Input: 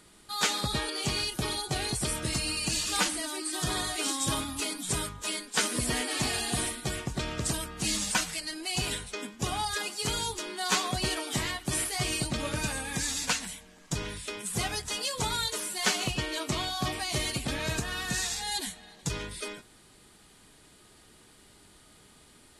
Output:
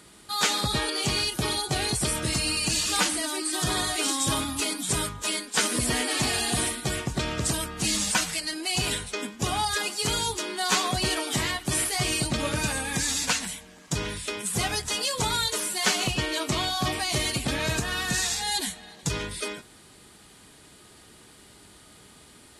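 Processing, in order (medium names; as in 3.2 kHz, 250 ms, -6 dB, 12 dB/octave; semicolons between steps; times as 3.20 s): in parallel at -1.5 dB: peak limiter -22.5 dBFS, peak gain reduction 7 dB; on the sum: high-pass 47 Hz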